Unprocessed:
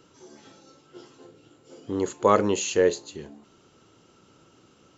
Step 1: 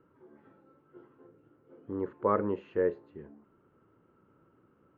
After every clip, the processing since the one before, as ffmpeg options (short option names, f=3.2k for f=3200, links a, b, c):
-af "lowpass=f=1.7k:w=0.5412,lowpass=f=1.7k:w=1.3066,equalizer=f=740:w=3.4:g=-6,volume=-7dB"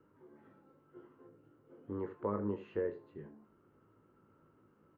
-filter_complex "[0:a]acrossover=split=480|1400[a][b][c];[a]acompressor=threshold=-33dB:ratio=4[d];[b]acompressor=threshold=-39dB:ratio=4[e];[c]acompressor=threshold=-54dB:ratio=4[f];[d][e][f]amix=inputs=3:normalize=0,asplit=2[g][h];[h]adelay=19,volume=-11dB[i];[g][i]amix=inputs=2:normalize=0,asplit=2[j][k];[k]aecho=0:1:20|78:0.398|0.211[l];[j][l]amix=inputs=2:normalize=0,volume=-3dB"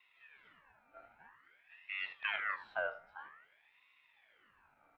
-af "aeval=exprs='val(0)*sin(2*PI*1700*n/s+1700*0.4/0.51*sin(2*PI*0.51*n/s))':c=same,volume=1dB"